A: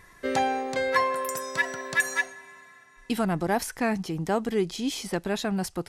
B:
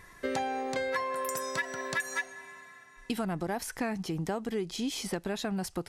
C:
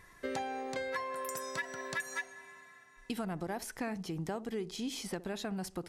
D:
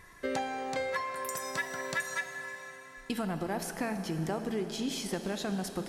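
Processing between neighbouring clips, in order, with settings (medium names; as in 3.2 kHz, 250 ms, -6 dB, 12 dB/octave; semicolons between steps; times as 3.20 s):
compression, threshold -29 dBFS, peak gain reduction 11 dB
band-passed feedback delay 64 ms, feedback 42%, band-pass 330 Hz, level -15 dB; trim -5 dB
plate-style reverb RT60 4.5 s, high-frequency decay 0.85×, DRR 7 dB; trim +3.5 dB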